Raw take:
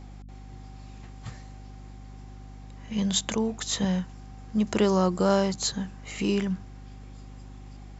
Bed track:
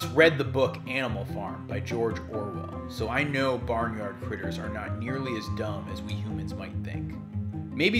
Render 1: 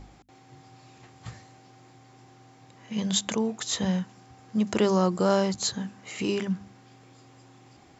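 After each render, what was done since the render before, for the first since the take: de-hum 50 Hz, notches 5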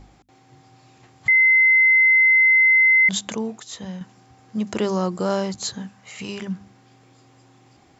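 1.28–3.09 s: bleep 2.06 kHz -11.5 dBFS; 3.60–4.01 s: gain -7 dB; 5.88–6.42 s: peaking EQ 330 Hz -12.5 dB 0.7 oct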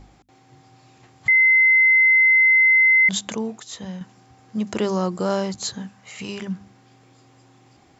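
no audible change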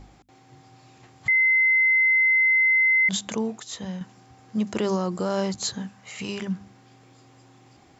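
peak limiter -16 dBFS, peak gain reduction 5 dB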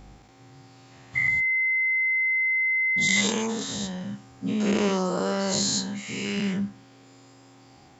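every event in the spectrogram widened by 240 ms; feedback comb 68 Hz, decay 0.33 s, harmonics all, mix 50%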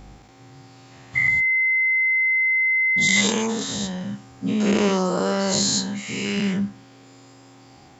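trim +4 dB; peak limiter -2 dBFS, peak gain reduction 1 dB

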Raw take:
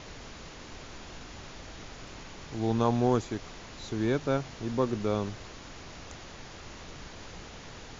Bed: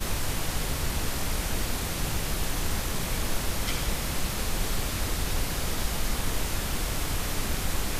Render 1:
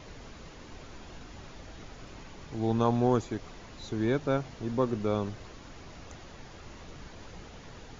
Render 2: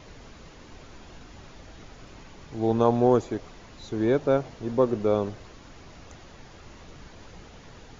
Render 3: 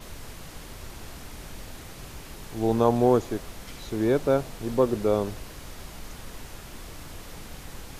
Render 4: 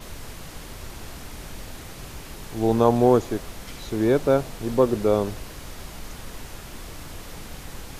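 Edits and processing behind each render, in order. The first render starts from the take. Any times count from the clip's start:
noise reduction 6 dB, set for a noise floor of -46 dBFS
dynamic bell 510 Hz, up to +8 dB, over -41 dBFS, Q 0.85
add bed -13.5 dB
trim +3 dB

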